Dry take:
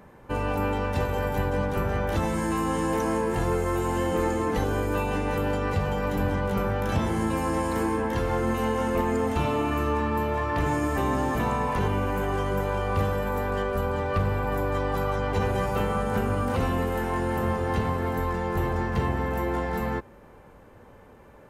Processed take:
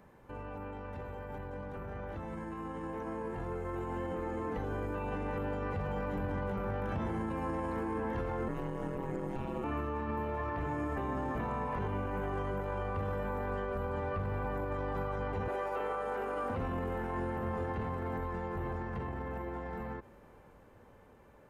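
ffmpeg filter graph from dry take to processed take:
ffmpeg -i in.wav -filter_complex "[0:a]asettb=1/sr,asplit=3[link_01][link_02][link_03];[link_01]atrim=end=8.484[link_04];[link_02]atrim=start=8.48:end=9.64,asetpts=PTS-STARTPTS,afade=type=in:duration=0.004:curve=qsin,afade=type=out:start_time=1.156:duration=0.004:curve=qsin,acrossover=split=460|6600[link_05][link_06][link_07];[link_05]acompressor=threshold=-27dB:ratio=4[link_08];[link_06]acompressor=threshold=-36dB:ratio=4[link_09];[link_07]acompressor=threshold=-57dB:ratio=4[link_10];[link_08][link_09][link_10]amix=inputs=3:normalize=0,aeval=exprs='val(0)*sin(2*PI*66*n/s)':channel_layout=same[link_11];[link_03]atrim=start=9.636[link_12];[link_04][link_11]acrossfade=duration=0.004:curve1=hsin:curve2=qsin[link_13];[link_13][link_12]acrossfade=duration=0.004:curve1=qsin:curve2=hsin,asettb=1/sr,asplit=3[link_14][link_15][link_16];[link_14]atrim=end=15.484[link_17];[link_15]atrim=start=15.48:end=16.5,asetpts=PTS-STARTPTS,afade=type=in:duration=0.004:curve=qsin,afade=type=out:start_time=1.016:duration=0.004:curve=qsin,highpass=frequency=340:width=0.5412,highpass=frequency=340:width=1.3066,aeval=exprs='val(0)+0.00447*(sin(2*PI*50*n/s)+sin(2*PI*2*50*n/s)/2+sin(2*PI*3*50*n/s)/3+sin(2*PI*4*50*n/s)/4+sin(2*PI*5*50*n/s)/5)':channel_layout=same[link_18];[link_16]atrim=start=16.496[link_19];[link_17][link_18]acrossfade=duration=0.004:curve1=hsin:curve2=qsin[link_20];[link_20][link_19]acrossfade=duration=0.004:curve1=qsin:curve2=hsin,acrossover=split=2500[link_21][link_22];[link_22]acompressor=threshold=-59dB:ratio=4:attack=1:release=60[link_23];[link_21][link_23]amix=inputs=2:normalize=0,alimiter=level_in=3dB:limit=-24dB:level=0:latency=1:release=55,volume=-3dB,dynaudnorm=framelen=650:gausssize=11:maxgain=7.5dB,volume=-8.5dB" out.wav

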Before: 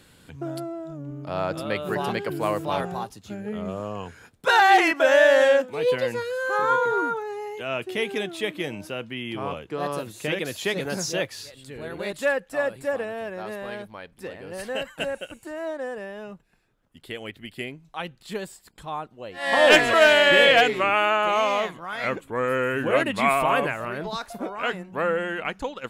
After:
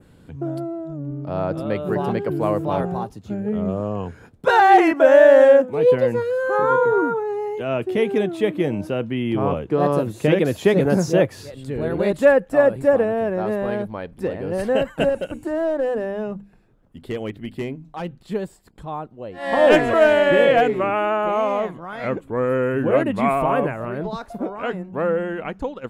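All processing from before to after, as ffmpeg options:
ffmpeg -i in.wav -filter_complex "[0:a]asettb=1/sr,asplit=3[link_01][link_02][link_03];[link_01]atrim=end=15.094[link_04];[link_02]atrim=start=15.09:end=18.19,asetpts=PTS-STARTPTS,afade=type=in:duration=0.004:curve=qsin,afade=type=out:start_time=3.096:duration=0.004:curve=qsin,bandreject=frequency=50:width_type=h:width=6,bandreject=frequency=100:width_type=h:width=6,bandreject=frequency=150:width_type=h:width=6,bandreject=frequency=200:width_type=h:width=6,bandreject=frequency=250:width_type=h:width=6,bandreject=frequency=300:width_type=h:width=6,volume=28dB,asoftclip=hard,volume=-28dB[link_05];[link_03]atrim=start=18.186[link_06];[link_04][link_05]acrossfade=duration=0.004:curve1=hsin:curve2=qsin[link_07];[link_07][link_06]acrossfade=duration=0.004:curve1=qsin:curve2=hsin,tiltshelf=frequency=1100:gain=8,dynaudnorm=framelen=870:gausssize=7:maxgain=11.5dB,adynamicequalizer=threshold=0.01:dfrequency=4200:dqfactor=1.1:tfrequency=4200:tqfactor=1.1:attack=5:release=100:ratio=0.375:range=3.5:mode=cutabove:tftype=bell,volume=-1dB" out.wav

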